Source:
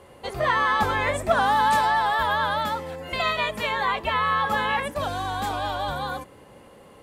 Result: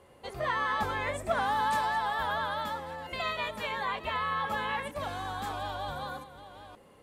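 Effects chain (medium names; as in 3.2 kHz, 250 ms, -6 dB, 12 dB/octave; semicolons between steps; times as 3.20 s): chunks repeated in reverse 614 ms, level -13 dB; trim -8.5 dB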